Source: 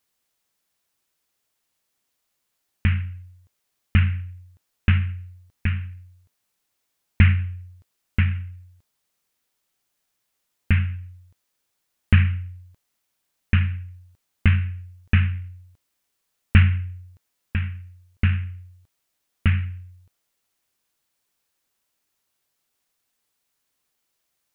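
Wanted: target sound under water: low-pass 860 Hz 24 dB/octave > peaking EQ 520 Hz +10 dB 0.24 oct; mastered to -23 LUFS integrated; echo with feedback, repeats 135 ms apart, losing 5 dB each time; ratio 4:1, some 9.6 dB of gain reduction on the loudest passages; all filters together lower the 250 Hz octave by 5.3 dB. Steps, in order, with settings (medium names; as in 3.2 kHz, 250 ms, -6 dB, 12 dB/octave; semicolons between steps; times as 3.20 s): peaking EQ 250 Hz -7.5 dB; compression 4:1, threshold -22 dBFS; low-pass 860 Hz 24 dB/octave; peaking EQ 520 Hz +10 dB 0.24 oct; feedback delay 135 ms, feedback 56%, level -5 dB; trim +7 dB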